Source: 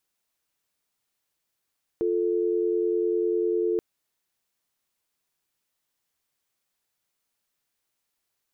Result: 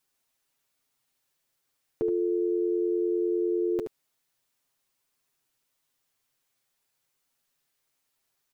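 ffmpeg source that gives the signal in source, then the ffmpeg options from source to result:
-f lavfi -i "aevalsrc='0.0596*(sin(2*PI*350*t)+sin(2*PI*440*t))':d=1.78:s=44100"
-af "aecho=1:1:7.5:0.65,aecho=1:1:74:0.422"

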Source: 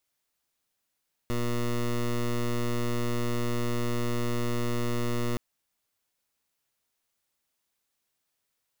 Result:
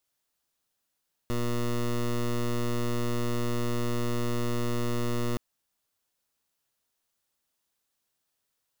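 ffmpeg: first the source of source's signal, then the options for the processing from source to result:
-f lavfi -i "aevalsrc='0.0422*(2*lt(mod(120*t,1),0.15)-1)':d=4.07:s=44100"
-af "equalizer=f=2.2k:w=4:g=-4"

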